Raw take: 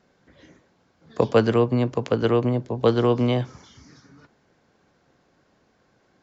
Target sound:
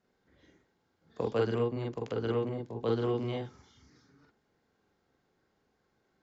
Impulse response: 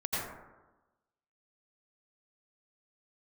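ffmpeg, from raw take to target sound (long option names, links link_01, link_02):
-filter_complex "[1:a]atrim=start_sample=2205,atrim=end_sample=3969,asetrate=83790,aresample=44100[link_01];[0:a][link_01]afir=irnorm=-1:irlink=0,volume=-7dB"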